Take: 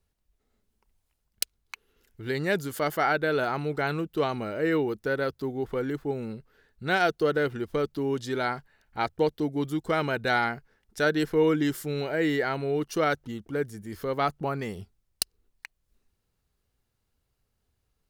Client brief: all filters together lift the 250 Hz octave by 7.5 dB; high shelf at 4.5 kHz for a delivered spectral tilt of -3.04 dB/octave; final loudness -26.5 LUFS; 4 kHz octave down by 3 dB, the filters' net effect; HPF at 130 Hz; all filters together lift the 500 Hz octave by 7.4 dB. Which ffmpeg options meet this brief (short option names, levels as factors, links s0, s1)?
-af "highpass=130,equalizer=f=250:t=o:g=7.5,equalizer=f=500:t=o:g=6.5,equalizer=f=4000:t=o:g=-8,highshelf=f=4500:g=8,volume=0.631"